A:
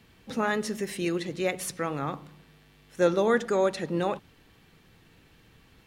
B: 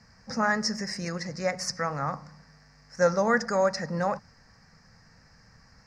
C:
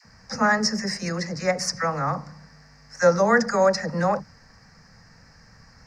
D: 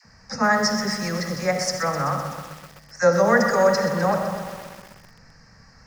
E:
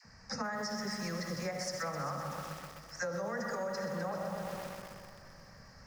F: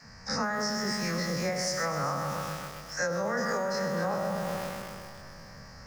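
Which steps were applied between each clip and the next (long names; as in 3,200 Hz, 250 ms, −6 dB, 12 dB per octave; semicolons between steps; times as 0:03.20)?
drawn EQ curve 220 Hz 0 dB, 350 Hz −16 dB, 530 Hz 0 dB, 1,900 Hz +3 dB, 3,400 Hz −26 dB, 5,000 Hz +14 dB, 11,000 Hz −19 dB; level +1.5 dB
all-pass dispersion lows, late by 47 ms, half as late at 610 Hz; level +5 dB
convolution reverb RT60 1.1 s, pre-delay 30 ms, DRR 7 dB; feedback echo at a low word length 127 ms, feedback 80%, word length 6 bits, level −10.5 dB
brickwall limiter −13 dBFS, peak gain reduction 7 dB; downward compressor, threshold −30 dBFS, peak gain reduction 12 dB; on a send: delay that swaps between a low-pass and a high-pass 201 ms, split 1,300 Hz, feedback 72%, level −12 dB; on the sum: level −5 dB
every bin's largest magnitude spread in time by 60 ms; level +3.5 dB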